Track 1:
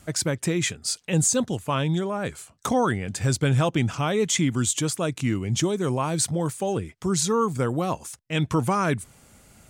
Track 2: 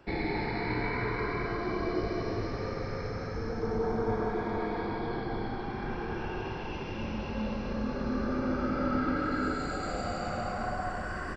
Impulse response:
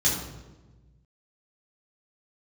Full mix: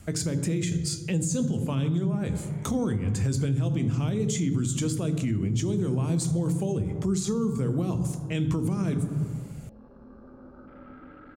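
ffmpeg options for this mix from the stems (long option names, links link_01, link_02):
-filter_complex "[0:a]lowshelf=frequency=440:gain=9.5,bandreject=frequency=60:width_type=h:width=6,bandreject=frequency=120:width_type=h:width=6,bandreject=frequency=180:width_type=h:width=6,bandreject=frequency=240:width_type=h:width=6,bandreject=frequency=300:width_type=h:width=6,bandreject=frequency=360:width_type=h:width=6,bandreject=frequency=420:width_type=h:width=6,volume=-2dB,asplit=2[link_01][link_02];[link_02]volume=-20dB[link_03];[1:a]afwtdn=0.0178,adelay=1950,volume=-17.5dB[link_04];[2:a]atrim=start_sample=2205[link_05];[link_03][link_05]afir=irnorm=-1:irlink=0[link_06];[link_01][link_04][link_06]amix=inputs=3:normalize=0,acrossover=split=480|3000[link_07][link_08][link_09];[link_08]acompressor=threshold=-35dB:ratio=6[link_10];[link_07][link_10][link_09]amix=inputs=3:normalize=0,alimiter=limit=-18.5dB:level=0:latency=1:release=180"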